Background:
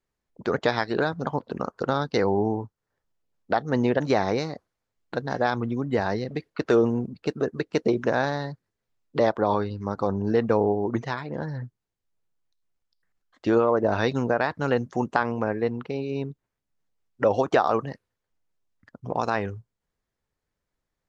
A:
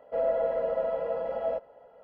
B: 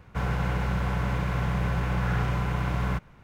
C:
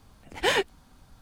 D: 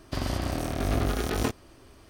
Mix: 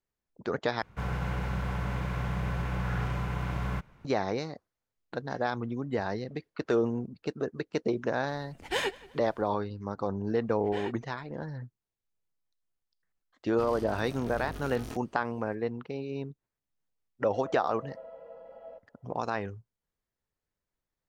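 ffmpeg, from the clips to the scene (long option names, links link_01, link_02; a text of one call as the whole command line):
ffmpeg -i bed.wav -i cue0.wav -i cue1.wav -i cue2.wav -i cue3.wav -filter_complex "[3:a]asplit=2[link_01][link_02];[0:a]volume=-6.5dB[link_03];[link_01]asplit=2[link_04][link_05];[link_05]adelay=177,lowpass=frequency=4800:poles=1,volume=-21dB,asplit=2[link_06][link_07];[link_07]adelay=177,lowpass=frequency=4800:poles=1,volume=0.41,asplit=2[link_08][link_09];[link_09]adelay=177,lowpass=frequency=4800:poles=1,volume=0.41[link_10];[link_04][link_06][link_08][link_10]amix=inputs=4:normalize=0[link_11];[link_02]aemphasis=mode=reproduction:type=75fm[link_12];[4:a]aeval=exprs='(tanh(8.91*val(0)+0.55)-tanh(0.55))/8.91':channel_layout=same[link_13];[link_03]asplit=2[link_14][link_15];[link_14]atrim=end=0.824[link_16];[2:a]atrim=end=3.23,asetpts=PTS-STARTPTS,volume=-5dB[link_17];[link_15]atrim=start=4.046[link_18];[link_11]atrim=end=1.21,asetpts=PTS-STARTPTS,volume=-6.5dB,afade=type=in:duration=0.004:curve=hsin,afade=type=out:start_time=1.206:duration=0.004:curve=hsin,adelay=8280[link_19];[link_12]atrim=end=1.21,asetpts=PTS-STARTPTS,volume=-15dB,afade=type=in:duration=0.004:curve=hsin,afade=type=out:start_time=1.206:duration=0.004:curve=hsin,adelay=10290[link_20];[link_13]atrim=end=2.09,asetpts=PTS-STARTPTS,volume=-11dB,afade=type=in:duration=0.004:curve=hsin,afade=type=out:start_time=2.086:duration=0.004:curve=hsin,adelay=13460[link_21];[1:a]atrim=end=2.03,asetpts=PTS-STARTPTS,volume=-17dB,afade=type=in:duration=0.004:curve=hsin,afade=type=out:start_time=2.026:duration=0.004:curve=hsin,adelay=17200[link_22];[link_16][link_17]acrossfade=duration=0.004:curve1=hsin:curve2=hsin[link_23];[link_23][link_18]acrossfade=duration=0.004:curve1=hsin:curve2=hsin[link_24];[link_24][link_19][link_20][link_21][link_22]amix=inputs=5:normalize=0" out.wav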